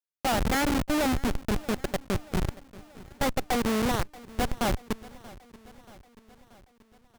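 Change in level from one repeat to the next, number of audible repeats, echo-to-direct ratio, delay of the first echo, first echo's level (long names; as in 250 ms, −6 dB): −4.5 dB, 4, −18.5 dB, 632 ms, −20.5 dB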